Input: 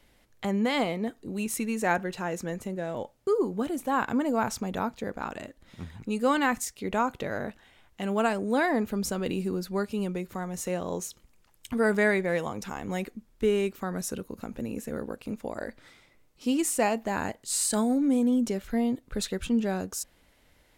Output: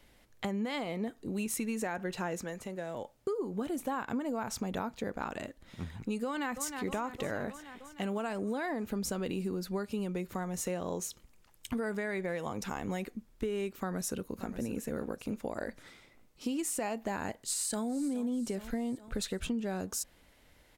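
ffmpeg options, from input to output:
-filter_complex "[0:a]asettb=1/sr,asplit=3[s0][s1][s2];[s0]atrim=end=2.404[s3];[s1]atrim=start=2.4:end=3.17,asetpts=PTS-STARTPTS,afade=t=in:d=0.004:c=qsin,afade=t=out:st=0.766:d=0.004:c=qsin,acrossover=split=520|6200[s4][s5][s6];[s4]acompressor=threshold=0.00794:ratio=4[s7];[s5]acompressor=threshold=0.0112:ratio=4[s8];[s6]acompressor=threshold=0.00224:ratio=4[s9];[s7][s8][s9]amix=inputs=3:normalize=0[s10];[s2]atrim=start=3.166[s11];[s3][s10]acrossfade=d=0.004:c1=hsin:c2=qsin[s12];[s12][s11]acrossfade=d=0.004:c1=qsin:c2=hsin,asplit=2[s13][s14];[s14]afade=t=in:st=6.25:d=0.01,afade=t=out:st=6.85:d=0.01,aecho=0:1:310|620|930|1240|1550|1860|2170|2480:0.16788|0.117516|0.0822614|0.057583|0.0403081|0.0282157|0.019751|0.0138257[s15];[s13][s15]amix=inputs=2:normalize=0,asplit=2[s16][s17];[s17]afade=t=in:st=13.78:d=0.01,afade=t=out:st=14.52:d=0.01,aecho=0:1:580|1160|1740:0.177828|0.0622398|0.0217839[s18];[s16][s18]amix=inputs=2:normalize=0,asplit=2[s19][s20];[s20]afade=t=in:st=17.4:d=0.01,afade=t=out:st=17.86:d=0.01,aecho=0:1:420|840|1260|1680|2100:0.177828|0.088914|0.044457|0.0222285|0.0111142[s21];[s19][s21]amix=inputs=2:normalize=0,alimiter=limit=0.112:level=0:latency=1:release=158,acompressor=threshold=0.0282:ratio=6"

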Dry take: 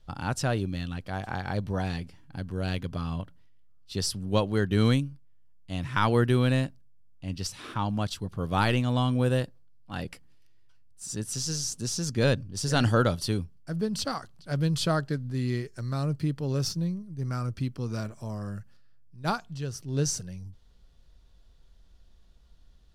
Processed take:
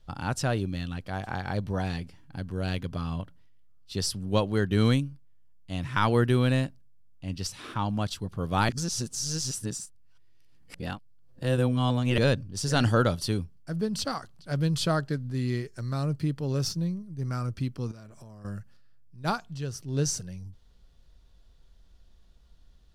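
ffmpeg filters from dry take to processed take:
-filter_complex "[0:a]asettb=1/sr,asplit=3[s0][s1][s2];[s0]atrim=end=17.914[s3];[s1]atrim=start=17.91:end=18.45,asetpts=PTS-STARTPTS,afade=t=in:d=0.004:c=qsin,afade=t=out:st=0.536:d=0.004:c=qsin,acompressor=threshold=0.00708:ratio=20:attack=3.2:release=140:knee=1:detection=peak[s4];[s2]atrim=start=18.446[s5];[s3][s4]acrossfade=d=0.004:c1=hsin:c2=qsin[s6];[s6][s5]acrossfade=d=0.004:c1=qsin:c2=hsin,asplit=3[s7][s8][s9];[s7]atrim=end=8.692[s10];[s8]atrim=start=8.688:end=12.182,asetpts=PTS-STARTPTS,areverse[s11];[s9]atrim=start=12.178[s12];[s10][s11]acrossfade=d=0.004:c1=hsin:c2=hsin[s13];[s13][s12]acrossfade=d=0.004:c1=hsin:c2=hsin"

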